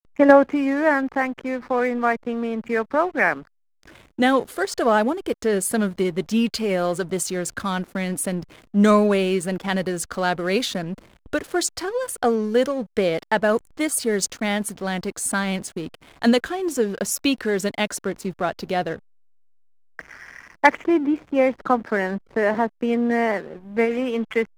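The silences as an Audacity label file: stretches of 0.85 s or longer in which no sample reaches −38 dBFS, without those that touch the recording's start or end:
18.980000	19.990000	silence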